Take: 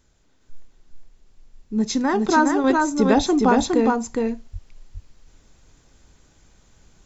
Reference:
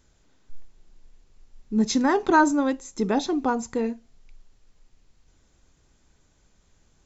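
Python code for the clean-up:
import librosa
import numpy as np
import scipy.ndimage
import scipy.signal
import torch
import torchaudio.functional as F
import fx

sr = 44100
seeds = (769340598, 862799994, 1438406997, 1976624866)

y = fx.highpass(x, sr, hz=140.0, slope=24, at=(3.16, 3.28), fade=0.02)
y = fx.highpass(y, sr, hz=140.0, slope=24, at=(4.52, 4.64), fade=0.02)
y = fx.fix_echo_inverse(y, sr, delay_ms=412, level_db=-3.0)
y = fx.gain(y, sr, db=fx.steps((0.0, 0.0), (2.64, -6.0)))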